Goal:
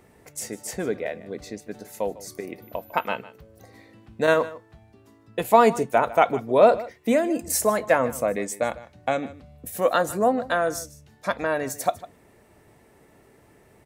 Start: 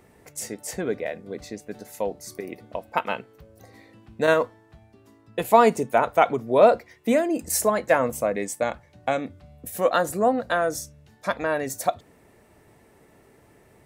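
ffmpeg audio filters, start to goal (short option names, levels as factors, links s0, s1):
-filter_complex "[0:a]asettb=1/sr,asplit=3[s0][s1][s2];[s0]atrim=end=2.624[s3];[s1]atrim=start=2.62:end=3.07,asetpts=PTS-STARTPTS,afade=t=in:d=0.004:c=qsin,afade=t=out:st=0.446:d=0.004:c=qsin,aeval=exprs='val(0)+0.00282*sin(2*PI*14000*n/s)':c=same[s4];[s2]atrim=start=3.066[s5];[s3][s4]acrossfade=d=0.004:c1=hsin:c2=qsin[s6];[s6][s5]acrossfade=d=0.004:c1=qsin:c2=hsin,asplit=2[s7][s8];[s8]aecho=0:1:152:0.126[s9];[s7][s9]amix=inputs=2:normalize=0"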